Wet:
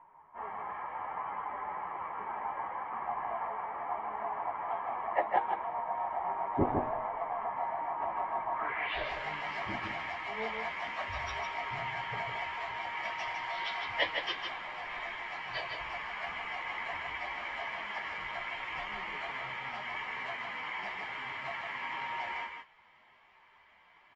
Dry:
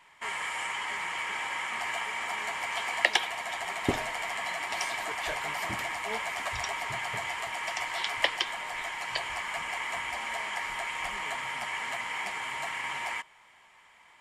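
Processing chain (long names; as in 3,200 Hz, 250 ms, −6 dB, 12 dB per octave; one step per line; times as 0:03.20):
time stretch by phase vocoder 1.7×
high-frequency loss of the air 380 metres
on a send: single-tap delay 156 ms −5 dB
on the sum: low-pass filter sweep 930 Hz → 6,000 Hz, 0:08.52–0:09.13
high-shelf EQ 9,800 Hz +8 dB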